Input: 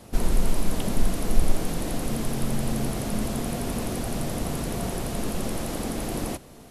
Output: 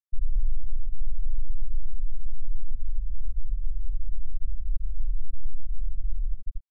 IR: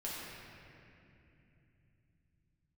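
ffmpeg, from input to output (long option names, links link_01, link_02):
-filter_complex "[0:a]asuperstop=centerf=5300:order=4:qfactor=1.1,aecho=1:1:239:0.376,acontrast=81,lowshelf=frequency=300:width_type=q:width=1.5:gain=12.5[link_01];[1:a]atrim=start_sample=2205,afade=type=out:start_time=0.15:duration=0.01,atrim=end_sample=7056[link_02];[link_01][link_02]afir=irnorm=-1:irlink=0,acompressor=threshold=-4dB:ratio=6,asoftclip=type=hard:threshold=-8.5dB,equalizer=frequency=130:width_type=o:width=2.5:gain=-15,afftfilt=real='re*gte(hypot(re,im),1.12)':imag='im*gte(hypot(re,im),1.12)':win_size=1024:overlap=0.75,volume=-5.5dB"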